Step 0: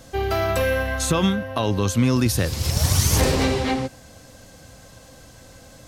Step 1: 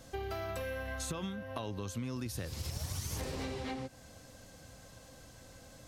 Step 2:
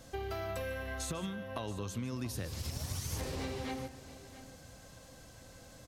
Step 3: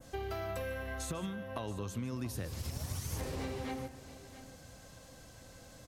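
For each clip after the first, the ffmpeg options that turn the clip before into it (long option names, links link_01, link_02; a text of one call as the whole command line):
ffmpeg -i in.wav -af "acompressor=threshold=-28dB:ratio=5,volume=-8.5dB" out.wav
ffmpeg -i in.wav -af "aecho=1:1:150|679:0.168|0.168" out.wav
ffmpeg -i in.wav -af "adynamicequalizer=threshold=0.00126:dfrequency=4400:dqfactor=0.76:tfrequency=4400:tqfactor=0.76:attack=5:release=100:ratio=0.375:range=2:mode=cutabove:tftype=bell" out.wav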